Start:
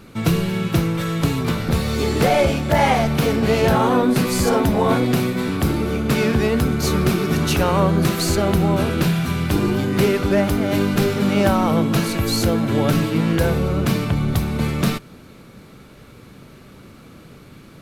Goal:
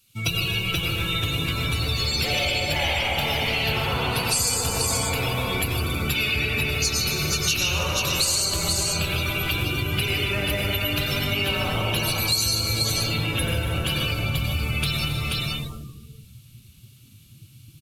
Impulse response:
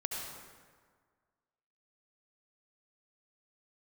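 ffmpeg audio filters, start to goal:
-filter_complex "[1:a]atrim=start_sample=2205,asetrate=35721,aresample=44100[a];[0:a][a]afir=irnorm=-1:irlink=0,afftdn=nr=26:nf=-26,firequalizer=gain_entry='entry(110,0);entry(190,-13);entry(320,-10);entry(1900,-6);entry(2800,10);entry(4000,5)':delay=0.05:min_phase=1,aecho=1:1:151|239|274|319|468|483:0.211|0.119|0.158|0.133|0.119|0.501,crystalizer=i=7.5:c=0,adynamicequalizer=threshold=0.0501:dfrequency=3400:dqfactor=1.5:tfrequency=3400:tqfactor=1.5:attack=5:release=100:ratio=0.375:range=2.5:mode=cutabove:tftype=bell,acompressor=threshold=-21dB:ratio=4,volume=-1dB"

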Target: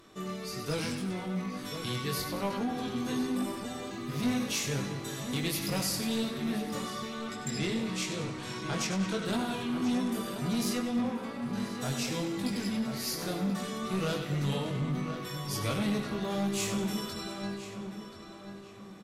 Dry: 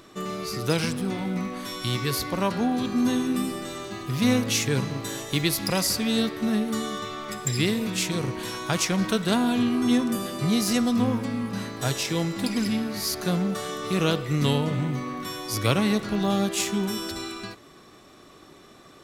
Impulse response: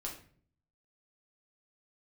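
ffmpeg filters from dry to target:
-filter_complex "[0:a]asplit=2[a][b];[b]aecho=0:1:96|192|288|384|480|576:0.355|0.174|0.0852|0.0417|0.0205|0.01[c];[a][c]amix=inputs=2:normalize=0,flanger=delay=20:depth=2.5:speed=1.2,asettb=1/sr,asplit=3[d][e][f];[d]atrim=end=7.314[g];[e]atrim=start=7.31:end=9.26,asetpts=PTS-STARTPTS,afade=t=in:d=0.004:c=qsin,afade=t=out:st=1.946:d=0.004:c=qsin,lowpass=8.2k[h];[f]atrim=start=9.256[i];[g][h]acrossfade=d=0.004:c1=hsin:c2=qsin[j];[j][i]acrossfade=d=0.004:c1=qsin:c2=hsin,asplit=3[k][l][m];[k]afade=t=out:st=10.73:d=0.02[n];[l]bass=f=250:g=-7,treble=f=4k:g=-7,afade=t=in:st=10.73:d=0.02,afade=t=out:st=11.41:d=0.02[o];[m]afade=t=in:st=11.41:d=0.02[p];[n][o][p]amix=inputs=3:normalize=0,asoftclip=type=tanh:threshold=-21dB,asplit=2[q][r];[r]adelay=1033,lowpass=f=2.8k:p=1,volume=-8.5dB,asplit=2[s][t];[t]adelay=1033,lowpass=f=2.8k:p=1,volume=0.38,asplit=2[u][v];[v]adelay=1033,lowpass=f=2.8k:p=1,volume=0.38,asplit=2[w][x];[x]adelay=1033,lowpass=f=2.8k:p=1,volume=0.38[y];[s][u][w][y]amix=inputs=4:normalize=0[z];[q][z]amix=inputs=2:normalize=0,volume=-3dB" -ar 48000 -c:a libmp3lame -b:a 64k

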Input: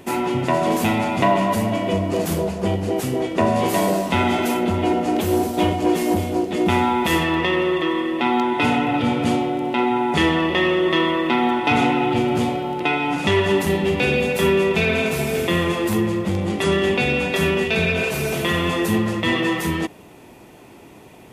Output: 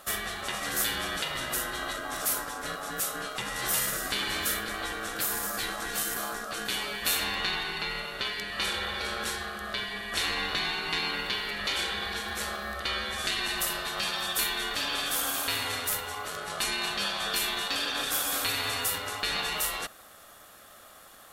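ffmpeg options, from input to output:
-af "aeval=exprs='val(0)*sin(2*PI*940*n/s)':c=same,afftfilt=real='re*lt(hypot(re,im),0.224)':imag='im*lt(hypot(re,im),0.224)':win_size=1024:overlap=0.75,crystalizer=i=4:c=0,volume=-8dB"

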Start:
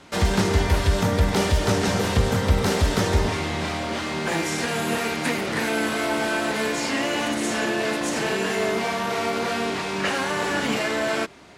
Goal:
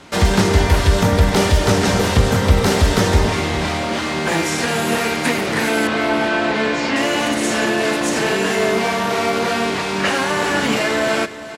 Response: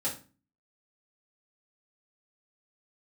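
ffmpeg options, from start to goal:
-filter_complex "[0:a]asettb=1/sr,asplit=3[a][b][c];[a]atrim=end=5.874[d];[b]atrim=start=5.87:end=6.96,asetpts=PTS-STARTPTS,afade=t=in:d=0.004:c=qsin,afade=t=out:st=1.086:d=0.004:c=qsin,lowpass=4.2k[e];[c]atrim=start=6.956[f];[d][e]acrossfade=d=0.004:c1=hsin:c2=qsin[g];[g][f]acrossfade=d=0.004:c1=qsin:c2=hsin,aecho=1:1:407:0.188,volume=6dB"

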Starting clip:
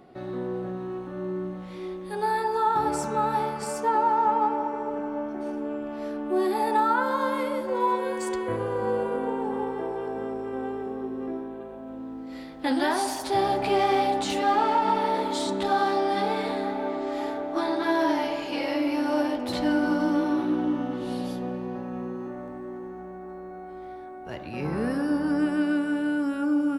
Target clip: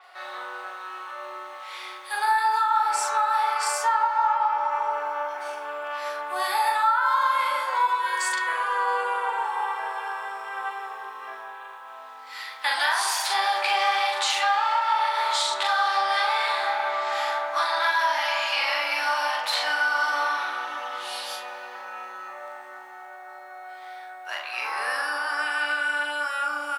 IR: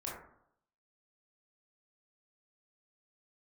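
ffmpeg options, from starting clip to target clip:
-filter_complex "[0:a]highpass=f=1k:w=0.5412,highpass=f=1k:w=1.3066,asplit=2[a][b];[b]adelay=41,volume=-2.5dB[c];[a][c]amix=inputs=2:normalize=0,acompressor=threshold=-32dB:ratio=4,asplit=2[d][e];[1:a]atrim=start_sample=2205[f];[e][f]afir=irnorm=-1:irlink=0,volume=-4.5dB[g];[d][g]amix=inputs=2:normalize=0,adynamicequalizer=threshold=0.00355:dfrequency=7200:dqfactor=0.7:tfrequency=7200:tqfactor=0.7:attack=5:release=100:ratio=0.375:range=2.5:mode=cutabove:tftype=highshelf,volume=8.5dB"

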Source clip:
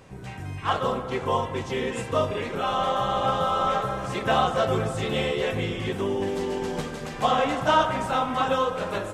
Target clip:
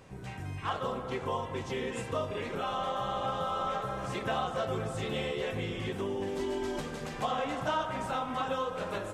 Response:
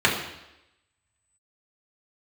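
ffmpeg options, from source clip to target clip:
-filter_complex "[0:a]asettb=1/sr,asplit=3[a][b][c];[a]atrim=end=6.394[d];[b]atrim=start=6.39:end=6.8,asetpts=PTS-STARTPTS,afade=t=in:d=0.004:c=qsin,afade=t=out:st=0.406:d=0.004:c=qsin,aecho=1:1:3.1:0.9,atrim=end_sample=18081[e];[c]atrim=start=6.796[f];[d][e]acrossfade=d=0.004:c1=hsin:c2=qsin[g];[g][f]acrossfade=d=0.004:c1=qsin:c2=hsin,acompressor=threshold=-29dB:ratio=2,volume=-4dB"

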